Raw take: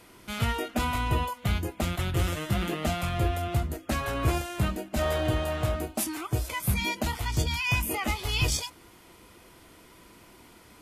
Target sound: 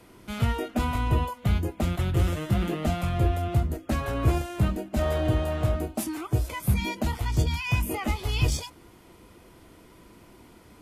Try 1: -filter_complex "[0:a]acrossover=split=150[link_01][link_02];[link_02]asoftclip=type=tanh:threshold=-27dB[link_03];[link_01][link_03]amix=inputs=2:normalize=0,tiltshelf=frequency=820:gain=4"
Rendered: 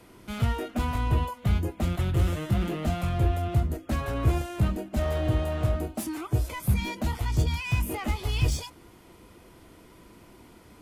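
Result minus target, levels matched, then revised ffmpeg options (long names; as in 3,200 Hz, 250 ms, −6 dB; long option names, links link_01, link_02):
soft clipping: distortion +15 dB
-filter_complex "[0:a]acrossover=split=150[link_01][link_02];[link_02]asoftclip=type=tanh:threshold=-16.5dB[link_03];[link_01][link_03]amix=inputs=2:normalize=0,tiltshelf=frequency=820:gain=4"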